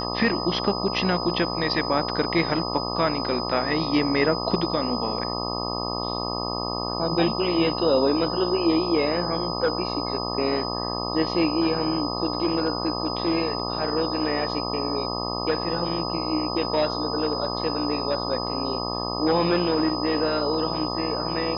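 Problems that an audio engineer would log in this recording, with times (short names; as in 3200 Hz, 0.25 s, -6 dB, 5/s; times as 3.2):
buzz 60 Hz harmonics 21 -30 dBFS
tone 5000 Hz -31 dBFS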